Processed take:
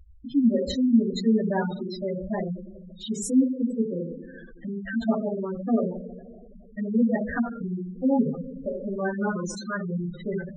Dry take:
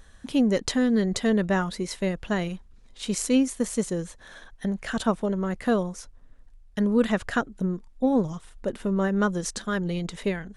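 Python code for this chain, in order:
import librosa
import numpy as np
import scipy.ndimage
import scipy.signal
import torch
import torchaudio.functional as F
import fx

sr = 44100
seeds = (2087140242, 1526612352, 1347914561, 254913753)

y = fx.env_lowpass_down(x, sr, base_hz=2100.0, full_db=-25.0, at=(2.17, 3.09))
y = fx.rev_double_slope(y, sr, seeds[0], early_s=0.47, late_s=2.8, knee_db=-18, drr_db=-6.5)
y = fx.spec_gate(y, sr, threshold_db=-10, keep='strong')
y = F.gain(torch.from_numpy(y), -6.0).numpy()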